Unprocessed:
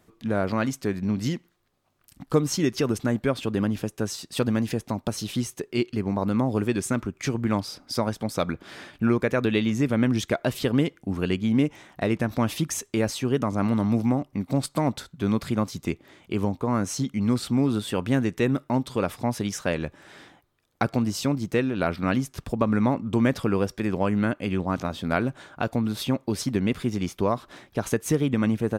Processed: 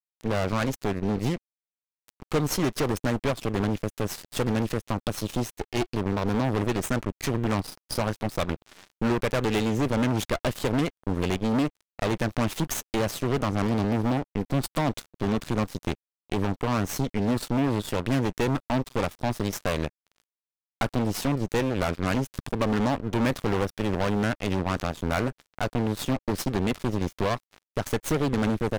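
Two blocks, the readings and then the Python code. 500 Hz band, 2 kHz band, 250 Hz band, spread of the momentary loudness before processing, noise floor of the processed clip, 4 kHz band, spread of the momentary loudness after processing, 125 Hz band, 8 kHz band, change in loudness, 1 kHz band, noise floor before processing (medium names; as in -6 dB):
-1.0 dB, 0.0 dB, -3.0 dB, 6 LU, under -85 dBFS, 0.0 dB, 5 LU, -0.5 dB, -1.5 dB, -1.5 dB, +1.0 dB, -64 dBFS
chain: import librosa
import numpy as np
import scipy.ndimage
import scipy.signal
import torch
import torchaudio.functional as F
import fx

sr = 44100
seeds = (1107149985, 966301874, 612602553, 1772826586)

y = 10.0 ** (-16.0 / 20.0) * np.tanh(x / 10.0 ** (-16.0 / 20.0))
y = fx.cheby_harmonics(y, sr, harmonics=(2, 6), levels_db=(-13, -12), full_scale_db=-16.0)
y = np.sign(y) * np.maximum(np.abs(y) - 10.0 ** (-38.0 / 20.0), 0.0)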